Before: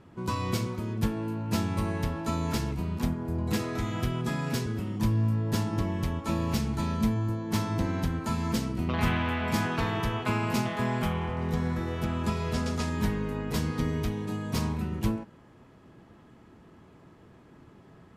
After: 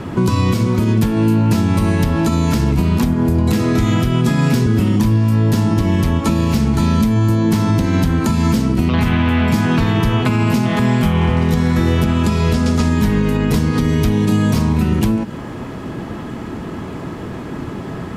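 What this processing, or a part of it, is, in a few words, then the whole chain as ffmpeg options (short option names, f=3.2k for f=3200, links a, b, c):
mastering chain: -filter_complex "[0:a]equalizer=f=250:t=o:w=0.77:g=2.5,acrossover=split=320|2200[a][b][c];[a]acompressor=threshold=-33dB:ratio=4[d];[b]acompressor=threshold=-46dB:ratio=4[e];[c]acompressor=threshold=-51dB:ratio=4[f];[d][e][f]amix=inputs=3:normalize=0,acompressor=threshold=-40dB:ratio=2,alimiter=level_in=31dB:limit=-1dB:release=50:level=0:latency=1,volume=-5dB"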